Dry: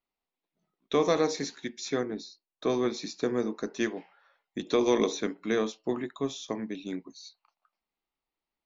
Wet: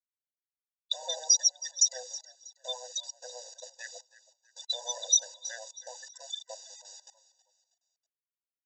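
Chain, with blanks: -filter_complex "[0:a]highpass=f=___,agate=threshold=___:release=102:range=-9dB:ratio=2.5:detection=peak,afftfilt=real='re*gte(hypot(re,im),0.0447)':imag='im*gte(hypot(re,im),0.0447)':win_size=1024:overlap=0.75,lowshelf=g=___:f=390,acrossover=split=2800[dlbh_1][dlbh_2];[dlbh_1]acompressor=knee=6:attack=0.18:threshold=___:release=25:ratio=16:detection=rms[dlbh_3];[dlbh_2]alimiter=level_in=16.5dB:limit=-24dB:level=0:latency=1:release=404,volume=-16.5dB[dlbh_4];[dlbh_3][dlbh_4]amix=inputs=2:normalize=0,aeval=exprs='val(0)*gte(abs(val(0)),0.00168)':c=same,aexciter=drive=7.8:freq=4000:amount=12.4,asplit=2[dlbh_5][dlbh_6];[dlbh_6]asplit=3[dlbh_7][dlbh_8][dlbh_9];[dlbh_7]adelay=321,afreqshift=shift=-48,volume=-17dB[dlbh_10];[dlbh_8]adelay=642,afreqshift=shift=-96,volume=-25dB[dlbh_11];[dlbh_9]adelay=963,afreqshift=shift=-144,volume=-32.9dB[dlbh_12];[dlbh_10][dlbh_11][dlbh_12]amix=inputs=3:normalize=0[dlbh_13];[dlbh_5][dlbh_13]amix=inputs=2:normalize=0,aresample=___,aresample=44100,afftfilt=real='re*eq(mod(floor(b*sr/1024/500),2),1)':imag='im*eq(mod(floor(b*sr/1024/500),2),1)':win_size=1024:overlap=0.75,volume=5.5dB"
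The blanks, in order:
200, -59dB, -6.5, -36dB, 16000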